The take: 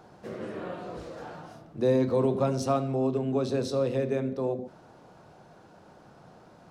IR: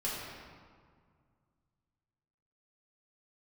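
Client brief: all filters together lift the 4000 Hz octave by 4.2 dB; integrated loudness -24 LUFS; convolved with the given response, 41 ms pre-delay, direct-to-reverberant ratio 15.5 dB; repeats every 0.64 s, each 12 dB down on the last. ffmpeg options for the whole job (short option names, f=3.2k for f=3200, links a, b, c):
-filter_complex "[0:a]equalizer=f=4k:t=o:g=5,aecho=1:1:640|1280|1920:0.251|0.0628|0.0157,asplit=2[a][b];[1:a]atrim=start_sample=2205,adelay=41[c];[b][c]afir=irnorm=-1:irlink=0,volume=-20.5dB[d];[a][d]amix=inputs=2:normalize=0,volume=4.5dB"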